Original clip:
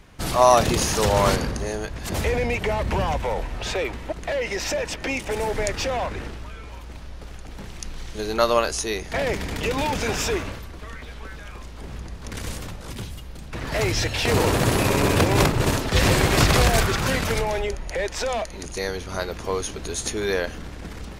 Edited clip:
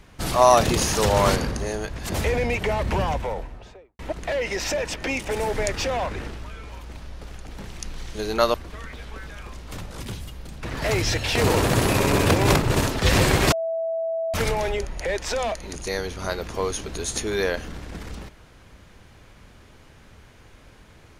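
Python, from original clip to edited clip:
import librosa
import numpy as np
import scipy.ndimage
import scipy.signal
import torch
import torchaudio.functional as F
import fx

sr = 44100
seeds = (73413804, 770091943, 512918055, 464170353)

y = fx.studio_fade_out(x, sr, start_s=2.95, length_s=1.04)
y = fx.edit(y, sr, fx.cut(start_s=8.54, length_s=2.09),
    fx.cut(start_s=11.81, length_s=0.81),
    fx.bleep(start_s=16.42, length_s=0.82, hz=656.0, db=-23.0), tone=tone)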